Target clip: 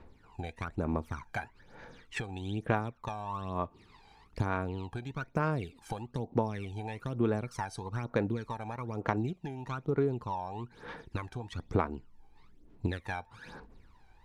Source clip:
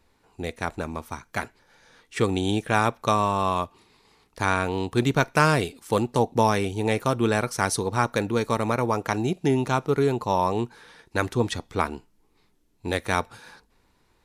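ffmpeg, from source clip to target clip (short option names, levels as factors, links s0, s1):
-af "aemphasis=mode=reproduction:type=75kf,acompressor=threshold=0.0178:ratio=16,aphaser=in_gain=1:out_gain=1:delay=1.3:decay=0.72:speed=1.1:type=sinusoidal"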